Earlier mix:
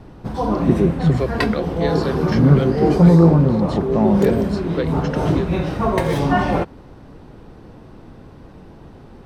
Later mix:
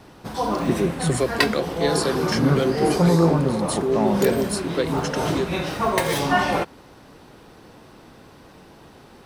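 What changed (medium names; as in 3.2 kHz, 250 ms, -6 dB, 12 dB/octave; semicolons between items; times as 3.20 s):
speech: remove Gaussian low-pass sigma 1.9 samples; background: add tilt EQ +3 dB/octave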